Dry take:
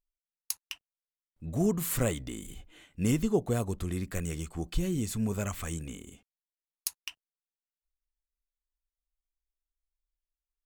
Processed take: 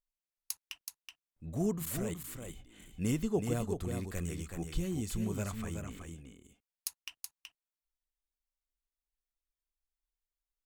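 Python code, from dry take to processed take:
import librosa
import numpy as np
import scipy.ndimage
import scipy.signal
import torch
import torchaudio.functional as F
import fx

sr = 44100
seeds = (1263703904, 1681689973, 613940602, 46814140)

y = fx.level_steps(x, sr, step_db=17, at=(1.77, 2.42))
y = fx.high_shelf(y, sr, hz=4800.0, db=-7.5, at=(5.44, 6.06))
y = y + 10.0 ** (-6.0 / 20.0) * np.pad(y, (int(375 * sr / 1000.0), 0))[:len(y)]
y = y * librosa.db_to_amplitude(-5.0)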